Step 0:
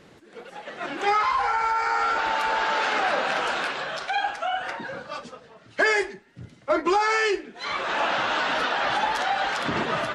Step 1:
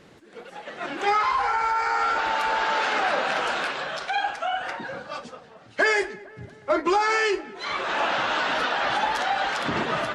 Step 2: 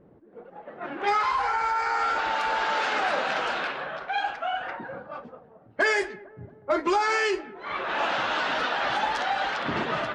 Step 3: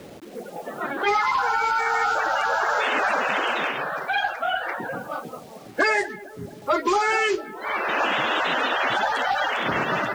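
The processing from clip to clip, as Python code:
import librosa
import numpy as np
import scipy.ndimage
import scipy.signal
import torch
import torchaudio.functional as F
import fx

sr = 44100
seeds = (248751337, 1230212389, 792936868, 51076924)

y1 = fx.echo_filtered(x, sr, ms=227, feedback_pct=72, hz=1800.0, wet_db=-20)
y2 = fx.env_lowpass(y1, sr, base_hz=630.0, full_db=-18.5)
y2 = y2 * 10.0 ** (-2.0 / 20.0)
y3 = fx.spec_quant(y2, sr, step_db=30)
y3 = fx.quant_dither(y3, sr, seeds[0], bits=10, dither='none')
y3 = fx.band_squash(y3, sr, depth_pct=40)
y3 = y3 * 10.0 ** (4.0 / 20.0)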